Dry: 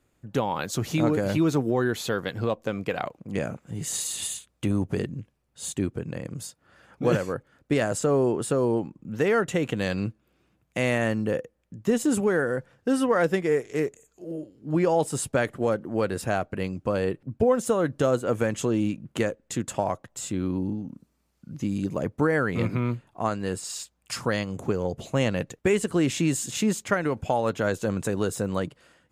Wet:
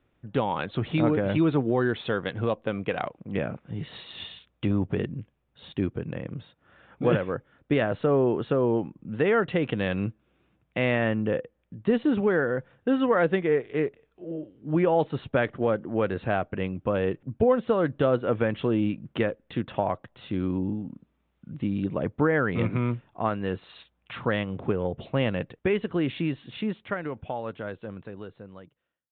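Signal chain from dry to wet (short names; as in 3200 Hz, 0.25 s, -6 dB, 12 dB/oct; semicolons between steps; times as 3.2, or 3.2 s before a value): ending faded out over 4.50 s; downsampling 8000 Hz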